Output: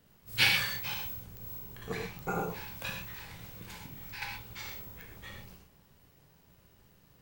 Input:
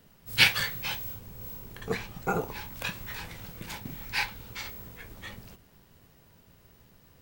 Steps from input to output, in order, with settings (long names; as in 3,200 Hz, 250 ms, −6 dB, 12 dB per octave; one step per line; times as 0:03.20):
0:03.03–0:04.22: downward compressor 6 to 1, threshold −38 dBFS, peak gain reduction 13 dB
reverb whose tail is shaped and stops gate 150 ms flat, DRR 0.5 dB
digital clicks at 0:01.37/0:02.19/0:05.01, −21 dBFS
level −6.5 dB